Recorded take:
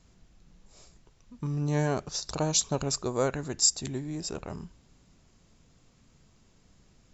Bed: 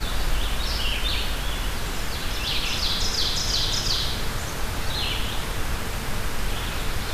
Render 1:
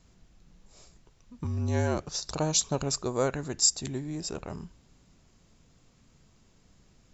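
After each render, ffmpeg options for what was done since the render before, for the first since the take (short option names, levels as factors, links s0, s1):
-filter_complex "[0:a]asettb=1/sr,asplit=3[s0][s1][s2];[s0]atrim=end=1.444[s3];[s1]atrim=start=1.44:end=2.03,asetpts=PTS-STARTPTS,afade=t=in:d=0.004:c=qsin,afade=t=out:st=0.586:d=0.004:c=qsin,afreqshift=-49[s4];[s2]atrim=start=2.026[s5];[s3][s4]acrossfade=d=0.004:c1=hsin:c2=qsin[s6];[s6][s5]acrossfade=d=0.004:c1=qsin:c2=hsin"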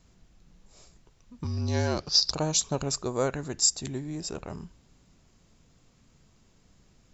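-filter_complex "[0:a]asettb=1/sr,asplit=3[s0][s1][s2];[s0]atrim=end=1.434[s3];[s1]atrim=start=1.43:end=2.32,asetpts=PTS-STARTPTS,afade=t=in:d=0.004:c=qsin,afade=t=out:st=0.886:d=0.004:c=qsin,lowpass=f=4900:t=q:w=8.3[s4];[s2]atrim=start=2.316[s5];[s3][s4]acrossfade=d=0.004:c1=hsin:c2=qsin[s6];[s6][s5]acrossfade=d=0.004:c1=qsin:c2=hsin"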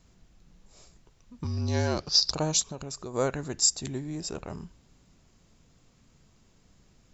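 -filter_complex "[0:a]asplit=3[s0][s1][s2];[s0]afade=t=out:st=2.62:d=0.02[s3];[s1]acompressor=threshold=0.0158:ratio=3:attack=3.2:release=140:knee=1:detection=peak,afade=t=in:st=2.62:d=0.02,afade=t=out:st=3.13:d=0.02[s4];[s2]afade=t=in:st=3.13:d=0.02[s5];[s3][s4][s5]amix=inputs=3:normalize=0"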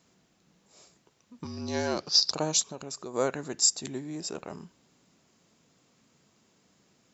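-af "highpass=200"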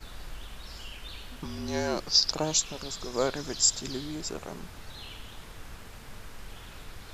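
-filter_complex "[1:a]volume=0.133[s0];[0:a][s0]amix=inputs=2:normalize=0"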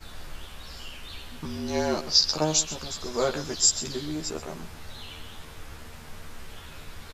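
-filter_complex "[0:a]asplit=2[s0][s1];[s1]adelay=13,volume=0.794[s2];[s0][s2]amix=inputs=2:normalize=0,aecho=1:1:129:0.178"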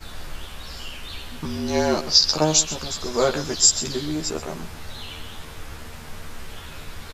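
-af "volume=1.88,alimiter=limit=0.708:level=0:latency=1"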